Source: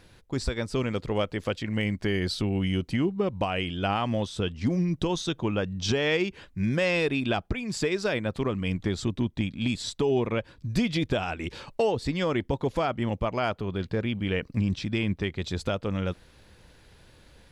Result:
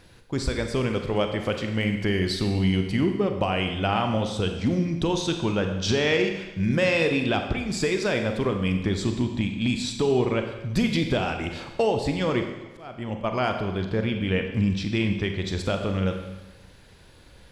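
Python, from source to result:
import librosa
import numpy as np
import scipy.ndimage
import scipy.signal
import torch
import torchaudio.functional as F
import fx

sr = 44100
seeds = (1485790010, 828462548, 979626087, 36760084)

y = fx.auto_swell(x, sr, attack_ms=555.0, at=(12.15, 13.23), fade=0.02)
y = fx.rev_schroeder(y, sr, rt60_s=1.1, comb_ms=32, drr_db=5.0)
y = y * 10.0 ** (2.0 / 20.0)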